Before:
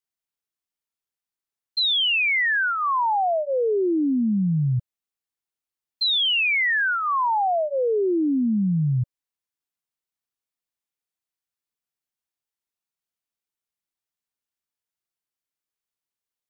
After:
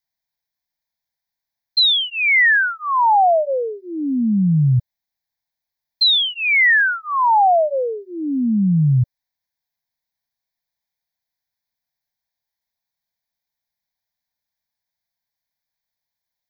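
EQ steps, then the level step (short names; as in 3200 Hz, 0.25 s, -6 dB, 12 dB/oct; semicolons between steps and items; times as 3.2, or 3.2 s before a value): fixed phaser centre 1900 Hz, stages 8; +8.5 dB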